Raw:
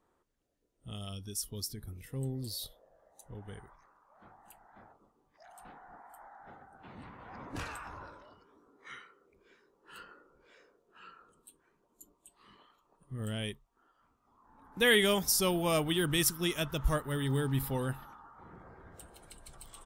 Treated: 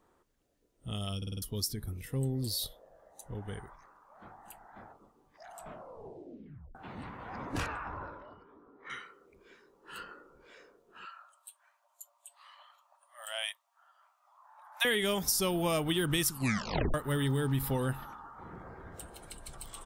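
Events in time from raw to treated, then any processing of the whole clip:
0:01.17: stutter in place 0.05 s, 5 plays
0:05.51: tape stop 1.24 s
0:07.66–0:08.90: low-pass filter 2,000 Hz
0:11.05–0:14.85: linear-phase brick-wall high-pass 560 Hz
0:16.28: tape stop 0.66 s
whole clip: downward compressor 6 to 1, threshold −32 dBFS; level +5.5 dB

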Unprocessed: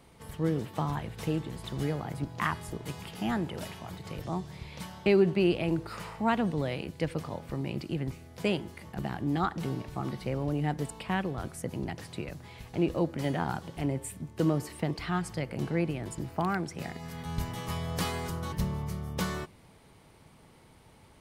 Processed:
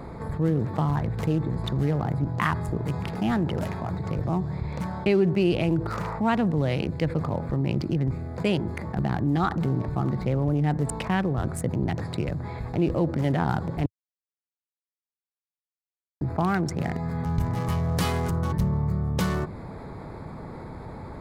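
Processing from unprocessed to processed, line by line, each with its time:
0:13.86–0:16.21: silence
whole clip: adaptive Wiener filter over 15 samples; dynamic equaliser 110 Hz, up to +5 dB, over −46 dBFS, Q 0.96; envelope flattener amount 50%

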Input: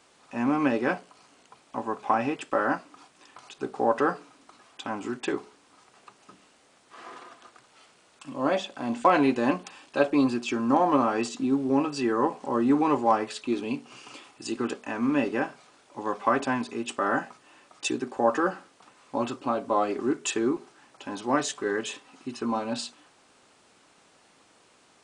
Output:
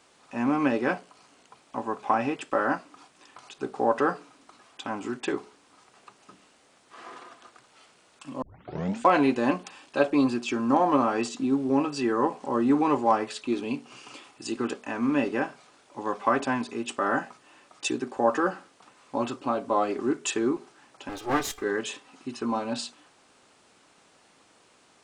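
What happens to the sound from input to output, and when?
0:08.42: tape start 0.58 s
0:21.09–0:21.62: lower of the sound and its delayed copy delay 2.5 ms

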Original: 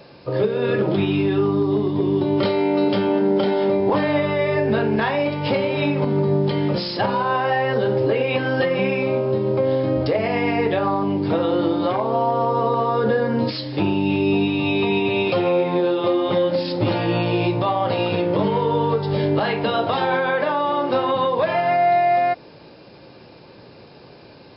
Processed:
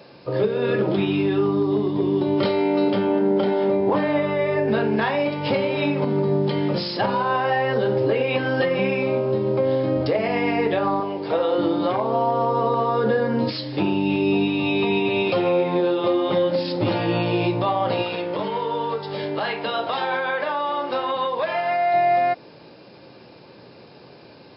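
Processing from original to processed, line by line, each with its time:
0:02.90–0:04.68: high-shelf EQ 4,400 Hz −11 dB
0:11.00–0:11.58: low shelf with overshoot 350 Hz −9 dB, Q 1.5
0:18.02–0:21.94: low-shelf EQ 400 Hz −11.5 dB
whole clip: high-pass filter 92 Hz; mains-hum notches 50/100/150 Hz; level −1 dB

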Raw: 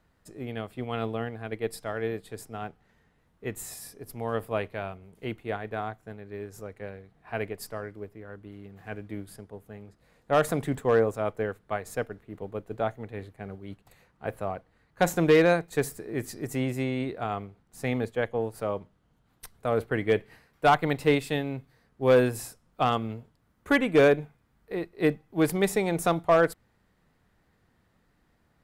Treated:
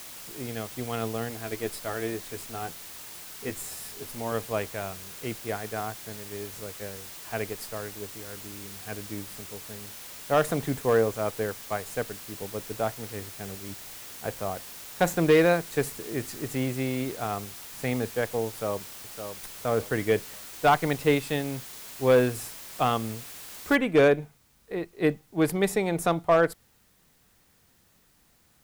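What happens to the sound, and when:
0:01.29–0:04.32: double-tracking delay 12 ms −6 dB
0:18.48–0:19.54: delay throw 560 ms, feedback 30%, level −8.5 dB
0:23.75: noise floor change −43 dB −65 dB

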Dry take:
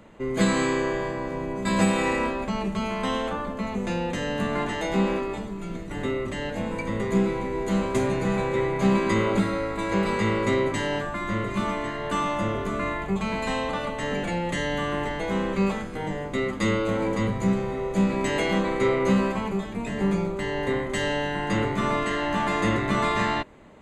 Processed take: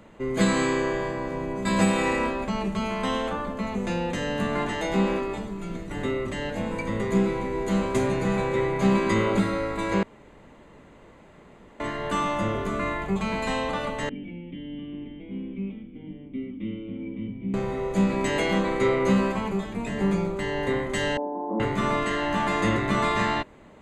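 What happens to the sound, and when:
0:10.03–0:11.80: fill with room tone
0:14.09–0:17.54: formant resonators in series i
0:21.17–0:21.60: Chebyshev band-pass filter 220–970 Hz, order 4

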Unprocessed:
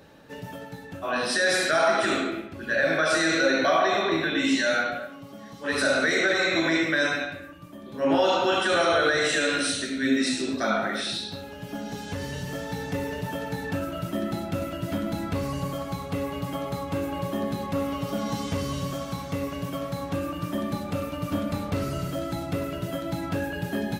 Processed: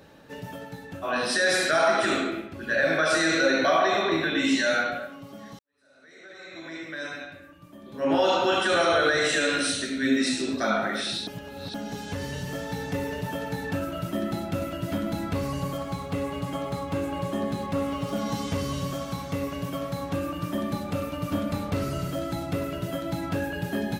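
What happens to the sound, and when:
0:05.59–0:08.30: fade in quadratic
0:11.27–0:11.74: reverse
0:15.77–0:18.16: linearly interpolated sample-rate reduction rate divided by 2×

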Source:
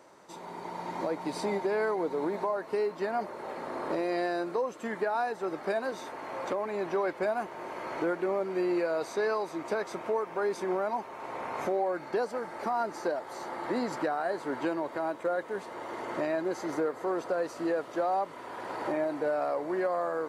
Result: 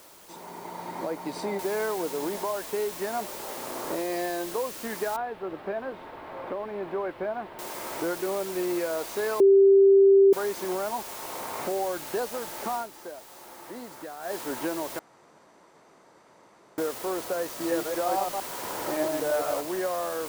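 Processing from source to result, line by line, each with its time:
0:01.59: noise floor change −53 dB −41 dB
0:04.01–0:04.51: notch filter 1,400 Hz
0:05.16–0:07.59: high-frequency loss of the air 490 metres
0:09.40–0:10.33: beep over 392 Hz −13 dBFS
0:12.74–0:14.34: duck −10 dB, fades 0.14 s
0:14.99–0:16.78: fill with room tone
0:17.49–0:19.61: delay that plays each chunk backwards 114 ms, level −2 dB

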